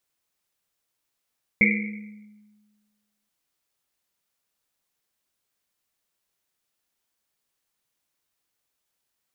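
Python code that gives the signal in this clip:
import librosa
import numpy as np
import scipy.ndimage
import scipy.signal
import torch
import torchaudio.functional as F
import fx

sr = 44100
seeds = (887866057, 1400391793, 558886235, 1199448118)

y = fx.risset_drum(sr, seeds[0], length_s=1.68, hz=210.0, decay_s=1.53, noise_hz=2200.0, noise_width_hz=310.0, noise_pct=50)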